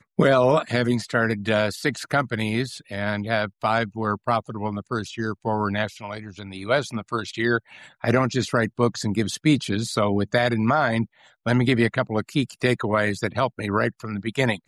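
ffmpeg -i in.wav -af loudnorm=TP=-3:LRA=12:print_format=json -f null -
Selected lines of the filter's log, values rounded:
"input_i" : "-23.7",
"input_tp" : "-6.2",
"input_lra" : "4.4",
"input_thresh" : "-33.8",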